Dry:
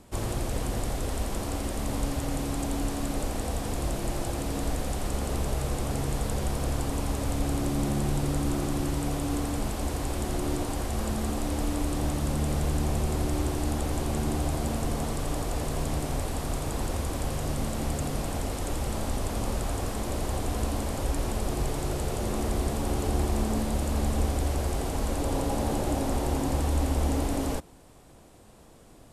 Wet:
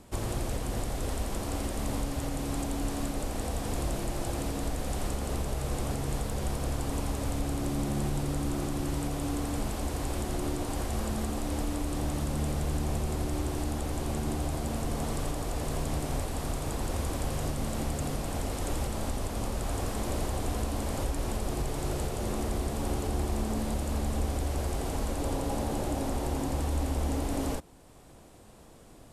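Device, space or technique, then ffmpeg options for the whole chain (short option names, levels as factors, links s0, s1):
clipper into limiter: -af "asoftclip=type=hard:threshold=0.141,alimiter=limit=0.0891:level=0:latency=1:release=482"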